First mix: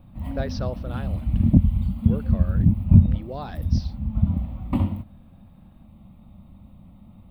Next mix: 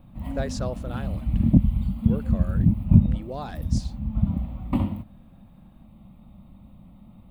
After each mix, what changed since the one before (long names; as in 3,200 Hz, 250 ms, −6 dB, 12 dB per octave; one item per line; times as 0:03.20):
speech: remove Butterworth low-pass 5,800 Hz 96 dB per octave
master: add parametric band 85 Hz −6.5 dB 0.41 octaves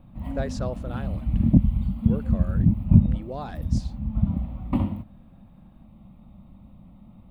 master: add high-shelf EQ 3,800 Hz −6.5 dB